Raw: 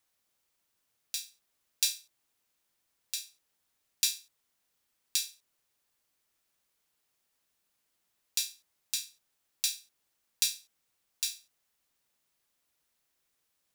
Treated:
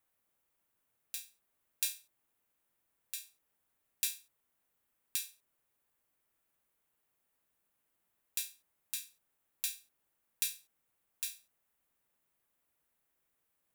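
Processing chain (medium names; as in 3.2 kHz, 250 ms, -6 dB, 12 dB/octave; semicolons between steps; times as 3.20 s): peaking EQ 5 kHz -12.5 dB 1.4 oct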